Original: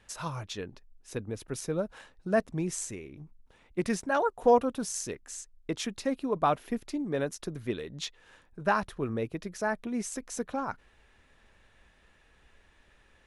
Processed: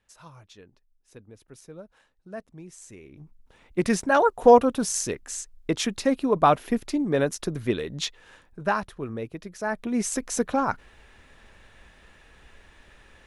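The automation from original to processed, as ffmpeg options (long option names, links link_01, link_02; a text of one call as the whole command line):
ffmpeg -i in.wav -af "volume=17.5dB,afade=type=in:start_time=2.8:duration=0.39:silence=0.251189,afade=type=in:start_time=3.19:duration=0.85:silence=0.421697,afade=type=out:start_time=7.98:duration=0.94:silence=0.375837,afade=type=in:start_time=9.59:duration=0.54:silence=0.316228" out.wav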